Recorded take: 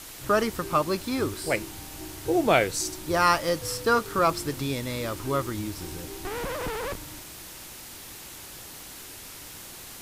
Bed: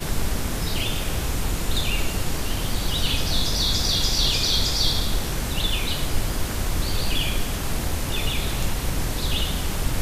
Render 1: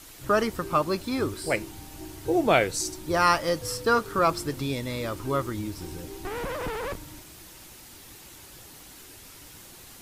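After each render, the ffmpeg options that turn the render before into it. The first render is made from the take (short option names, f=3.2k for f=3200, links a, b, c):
-af "afftdn=nr=6:nf=-43"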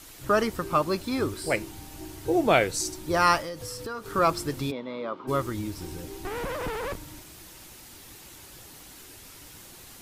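-filter_complex "[0:a]asettb=1/sr,asplit=3[a][b][c];[a]atrim=end=3.404[d];[b]atrim=start=3.4:end=4.12,asetpts=PTS-STARTPTS,afade=t=in:d=0.004:c=qsin,afade=t=out:st=0.716:d=0.004:c=qsin,acompressor=threshold=-33dB:ratio=5:attack=3.2:release=140:knee=1:detection=peak[e];[c]atrim=start=4.116[f];[d][e]acrossfade=d=0.004:c1=hsin:c2=qsin[g];[g][f]acrossfade=d=0.004:c1=qsin:c2=hsin,asplit=3[h][i][j];[h]afade=t=out:st=4.7:d=0.02[k];[i]highpass=f=210:w=0.5412,highpass=f=210:w=1.3066,equalizer=f=310:t=q:w=4:g=-7,equalizer=f=1.1k:t=q:w=4:g=5,equalizer=f=1.8k:t=q:w=4:g=-10,equalizer=f=2.6k:t=q:w=4:g=-9,lowpass=f=3k:w=0.5412,lowpass=f=3k:w=1.3066,afade=t=in:st=4.7:d=0.02,afade=t=out:st=5.27:d=0.02[l];[j]afade=t=in:st=5.27:d=0.02[m];[k][l][m]amix=inputs=3:normalize=0"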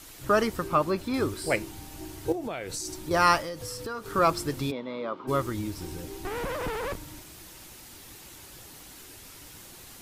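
-filter_complex "[0:a]asettb=1/sr,asplit=3[a][b][c];[a]atrim=end=0.674[d];[b]atrim=start=0.67:end=1.14,asetpts=PTS-STARTPTS,afade=t=in:d=0.004:c=qsin,afade=t=out:st=0.466:d=0.004:c=qsin,acrossover=split=3000[e][f];[f]acompressor=threshold=-46dB:ratio=4:attack=1:release=60[g];[e][g]amix=inputs=2:normalize=0[h];[c]atrim=start=1.136[i];[d][h]acrossfade=d=0.004:c1=hsin:c2=qsin[j];[j][i]acrossfade=d=0.004:c1=qsin:c2=hsin,asettb=1/sr,asplit=3[k][l][m];[k]atrim=end=2.324[n];[l]atrim=start=2.32:end=3.11,asetpts=PTS-STARTPTS,afade=t=in:d=0.004:c=qsin,afade=t=out:st=0.786:d=0.004:c=qsin,acompressor=threshold=-30dB:ratio=10:attack=3.2:release=140:knee=1:detection=peak[o];[m]atrim=start=3.106[p];[n][o]acrossfade=d=0.004:c1=hsin:c2=qsin[q];[q][p]acrossfade=d=0.004:c1=qsin:c2=hsin"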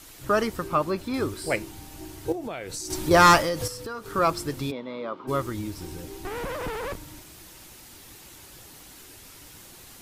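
-filter_complex "[0:a]asettb=1/sr,asplit=3[a][b][c];[a]atrim=end=2.904[d];[b]atrim=start=2.9:end=3.68,asetpts=PTS-STARTPTS,afade=t=in:d=0.004:c=qsin,afade=t=out:st=0.776:d=0.004:c=qsin,aeval=exprs='0.376*sin(PI/2*1.78*val(0)/0.376)':c=same[e];[c]atrim=start=3.676[f];[d][e]acrossfade=d=0.004:c1=hsin:c2=qsin[g];[g][f]acrossfade=d=0.004:c1=qsin:c2=hsin"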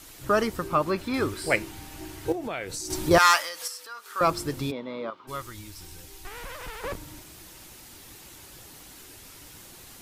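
-filter_complex "[0:a]asettb=1/sr,asplit=3[a][b][c];[a]atrim=end=0.864[d];[b]atrim=start=0.86:end=2.65,asetpts=PTS-STARTPTS,afade=t=in:d=0.004:c=qsin,afade=t=out:st=1.786:d=0.004:c=qsin,equalizer=f=1.9k:t=o:w=1.8:g=5[e];[c]atrim=start=2.646[f];[d][e]acrossfade=d=0.004:c1=hsin:c2=qsin[g];[g][f]acrossfade=d=0.004:c1=qsin:c2=hsin,asettb=1/sr,asplit=3[h][i][j];[h]atrim=end=3.184[k];[i]atrim=start=3.18:end=4.21,asetpts=PTS-STARTPTS,afade=t=in:d=0.004:c=qsin,afade=t=out:st=1.026:d=0.004:c=qsin,highpass=1.2k[l];[j]atrim=start=4.206[m];[k][l]acrossfade=d=0.004:c1=hsin:c2=qsin[n];[n][m]acrossfade=d=0.004:c1=qsin:c2=hsin,asettb=1/sr,asplit=3[o][p][q];[o]atrim=end=5.104[r];[p]atrim=start=5.1:end=6.84,asetpts=PTS-STARTPTS,afade=t=in:d=0.004:c=qsin,afade=t=out:st=1.736:d=0.004:c=qsin,equalizer=f=280:w=0.32:g=-14.5[s];[q]atrim=start=6.836[t];[r][s]acrossfade=d=0.004:c1=hsin:c2=qsin[u];[u][t]acrossfade=d=0.004:c1=qsin:c2=hsin"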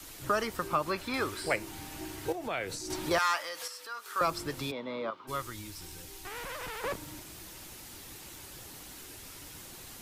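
-filter_complex "[0:a]acrossover=split=110|530|1300|4200[a][b][c][d][e];[a]acompressor=threshold=-51dB:ratio=4[f];[b]acompressor=threshold=-39dB:ratio=4[g];[c]acompressor=threshold=-31dB:ratio=4[h];[d]acompressor=threshold=-33dB:ratio=4[i];[e]acompressor=threshold=-43dB:ratio=4[j];[f][g][h][i][j]amix=inputs=5:normalize=0"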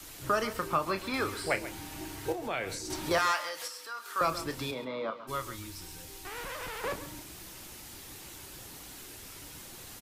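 -filter_complex "[0:a]asplit=2[a][b];[b]adelay=31,volume=-11dB[c];[a][c]amix=inputs=2:normalize=0,aecho=1:1:136:0.2"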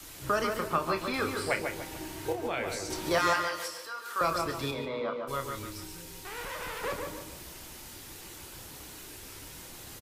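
-filter_complex "[0:a]asplit=2[a][b];[b]adelay=29,volume=-10.5dB[c];[a][c]amix=inputs=2:normalize=0,asplit=2[d][e];[e]adelay=148,lowpass=f=2.1k:p=1,volume=-4.5dB,asplit=2[f][g];[g]adelay=148,lowpass=f=2.1k:p=1,volume=0.4,asplit=2[h][i];[i]adelay=148,lowpass=f=2.1k:p=1,volume=0.4,asplit=2[j][k];[k]adelay=148,lowpass=f=2.1k:p=1,volume=0.4,asplit=2[l][m];[m]adelay=148,lowpass=f=2.1k:p=1,volume=0.4[n];[d][f][h][j][l][n]amix=inputs=6:normalize=0"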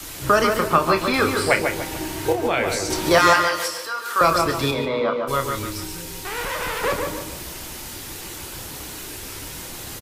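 -af "volume=11.5dB"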